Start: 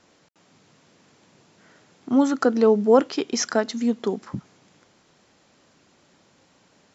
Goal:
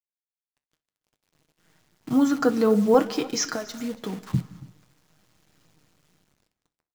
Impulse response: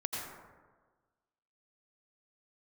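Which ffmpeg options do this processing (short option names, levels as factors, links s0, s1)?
-filter_complex "[0:a]dynaudnorm=f=470:g=7:m=3.98,agate=range=0.0224:threshold=0.00447:ratio=3:detection=peak,asubboost=boost=7:cutoff=170,aecho=1:1:6.4:0.53,asettb=1/sr,asplit=3[s0][s1][s2];[s0]atrim=end=3.554[s3];[s1]atrim=start=3.55:end=4.29,asetpts=PTS-STARTPTS,afade=t=in:d=0.004:c=qsin,afade=t=out:st=0.736:d=0.004:c=qsin,acompressor=threshold=0.0631:ratio=6[s4];[s2]atrim=start=4.286[s5];[s3][s4]acrossfade=d=0.004:c1=hsin:c2=qsin[s6];[s6][s5]acrossfade=d=0.004:c1=qsin:c2=hsin,acrusher=bits=7:dc=4:mix=0:aa=0.000001,aecho=1:1:280:0.0891,asplit=2[s7][s8];[1:a]atrim=start_sample=2205,afade=t=out:st=0.32:d=0.01,atrim=end_sample=14553,adelay=63[s9];[s8][s9]afir=irnorm=-1:irlink=0,volume=0.112[s10];[s7][s10]amix=inputs=2:normalize=0,flanger=delay=8.5:depth=6.3:regen=-70:speed=0.93:shape=triangular"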